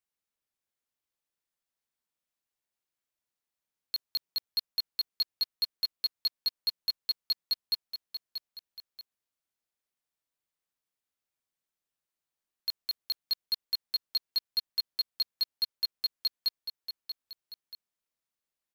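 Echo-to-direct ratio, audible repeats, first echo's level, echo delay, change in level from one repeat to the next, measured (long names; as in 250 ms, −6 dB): −8.0 dB, 2, −9.5 dB, 634 ms, −4.5 dB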